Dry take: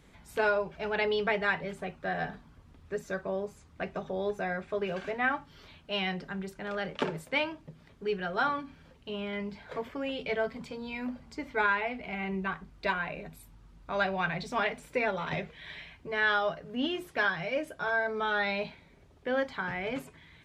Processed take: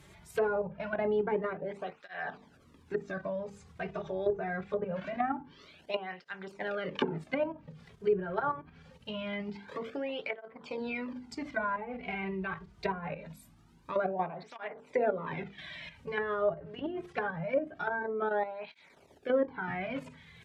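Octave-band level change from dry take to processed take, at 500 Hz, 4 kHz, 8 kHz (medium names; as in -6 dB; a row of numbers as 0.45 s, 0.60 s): +0.5 dB, -8.5 dB, no reading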